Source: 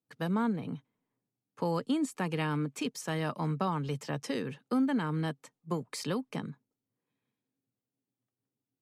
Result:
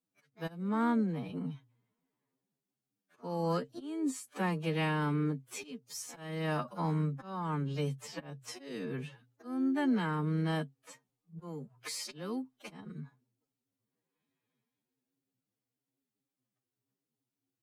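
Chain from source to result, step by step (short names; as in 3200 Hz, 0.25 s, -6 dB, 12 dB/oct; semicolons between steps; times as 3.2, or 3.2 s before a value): notches 60/120 Hz; harmoniser +5 st -15 dB; auto swell 0.177 s; time stretch by phase-locked vocoder 2×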